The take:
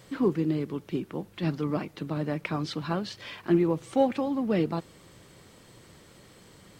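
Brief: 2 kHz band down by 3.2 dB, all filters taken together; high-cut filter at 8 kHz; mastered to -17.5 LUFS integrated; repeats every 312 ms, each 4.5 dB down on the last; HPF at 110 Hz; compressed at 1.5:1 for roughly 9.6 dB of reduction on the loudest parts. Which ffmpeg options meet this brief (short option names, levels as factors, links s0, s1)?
-af "highpass=110,lowpass=8000,equalizer=f=2000:t=o:g=-4,acompressor=threshold=0.00562:ratio=1.5,aecho=1:1:312|624|936|1248|1560|1872|2184|2496|2808:0.596|0.357|0.214|0.129|0.0772|0.0463|0.0278|0.0167|0.01,volume=8.41"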